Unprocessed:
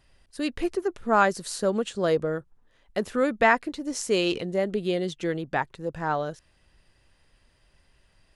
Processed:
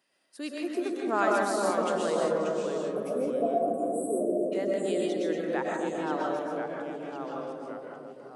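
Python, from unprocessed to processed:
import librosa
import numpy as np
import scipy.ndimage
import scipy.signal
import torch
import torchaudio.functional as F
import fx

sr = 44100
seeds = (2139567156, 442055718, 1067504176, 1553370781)

y = scipy.signal.sosfilt(scipy.signal.butter(4, 220.0, 'highpass', fs=sr, output='sos'), x)
y = fx.high_shelf(y, sr, hz=10000.0, db=6.0)
y = fx.rev_freeverb(y, sr, rt60_s=0.52, hf_ratio=0.4, predelay_ms=85, drr_db=-1.0)
y = fx.spec_erase(y, sr, start_s=2.77, length_s=1.75, low_hz=830.0, high_hz=7700.0)
y = fx.echo_filtered(y, sr, ms=266, feedback_pct=64, hz=970.0, wet_db=-3)
y = fx.echo_pitch(y, sr, ms=353, semitones=-2, count=2, db_per_echo=-6.0)
y = y * 10.0 ** (-8.0 / 20.0)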